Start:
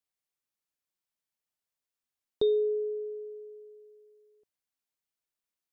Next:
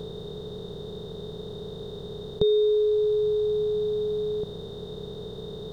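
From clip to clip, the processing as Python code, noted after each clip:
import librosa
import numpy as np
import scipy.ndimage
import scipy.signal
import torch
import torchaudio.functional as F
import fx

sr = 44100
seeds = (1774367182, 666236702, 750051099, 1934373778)

y = fx.bin_compress(x, sr, power=0.2)
y = fx.low_shelf_res(y, sr, hz=220.0, db=7.5, q=3.0)
y = y * 10.0 ** (5.0 / 20.0)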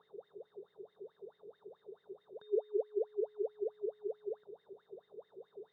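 y = fx.wah_lfo(x, sr, hz=4.6, low_hz=370.0, high_hz=2100.0, q=16.0)
y = y * 10.0 ** (-2.5 / 20.0)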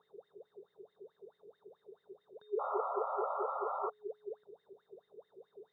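y = fx.spec_paint(x, sr, seeds[0], shape='noise', start_s=2.59, length_s=1.31, low_hz=510.0, high_hz=1400.0, level_db=-34.0)
y = y * 10.0 ** (-3.5 / 20.0)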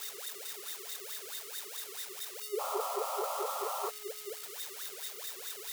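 y = x + 0.5 * 10.0 ** (-29.0 / 20.0) * np.diff(np.sign(x), prepend=np.sign(x[:1]))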